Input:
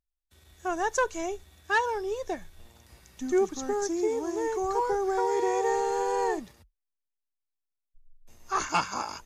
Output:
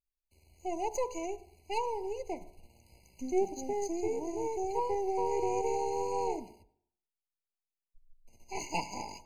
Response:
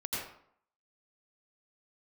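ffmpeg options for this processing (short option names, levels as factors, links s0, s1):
-filter_complex "[0:a]aeval=exprs='if(lt(val(0),0),0.447*val(0),val(0))':c=same,bandreject=f=71.34:t=h:w=4,bandreject=f=142.68:t=h:w=4,bandreject=f=214.02:t=h:w=4,bandreject=f=285.36:t=h:w=4,bandreject=f=356.7:t=h:w=4,bandreject=f=428.04:t=h:w=4,bandreject=f=499.38:t=h:w=4,bandreject=f=570.72:t=h:w=4,bandreject=f=642.06:t=h:w=4,bandreject=f=713.4:t=h:w=4,bandreject=f=784.74:t=h:w=4,bandreject=f=856.08:t=h:w=4,bandreject=f=927.42:t=h:w=4,bandreject=f=998.76:t=h:w=4,bandreject=f=1070.1:t=h:w=4,bandreject=f=1141.44:t=h:w=4,bandreject=f=1212.78:t=h:w=4,bandreject=f=1284.12:t=h:w=4,bandreject=f=1355.46:t=h:w=4,bandreject=f=1426.8:t=h:w=4,bandreject=f=1498.14:t=h:w=4,bandreject=f=1569.48:t=h:w=4,asplit=2[s0][s1];[1:a]atrim=start_sample=2205[s2];[s1][s2]afir=irnorm=-1:irlink=0,volume=0.0668[s3];[s0][s3]amix=inputs=2:normalize=0,afftfilt=real='re*eq(mod(floor(b*sr/1024/1000),2),0)':imag='im*eq(mod(floor(b*sr/1024/1000),2),0)':win_size=1024:overlap=0.75,volume=0.708"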